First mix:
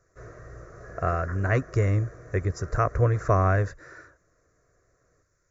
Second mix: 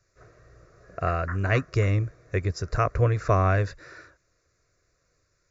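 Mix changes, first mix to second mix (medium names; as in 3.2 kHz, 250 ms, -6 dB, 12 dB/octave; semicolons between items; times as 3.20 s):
first sound -10.0 dB; second sound +5.5 dB; master: add high-order bell 3.4 kHz +10 dB 1.3 oct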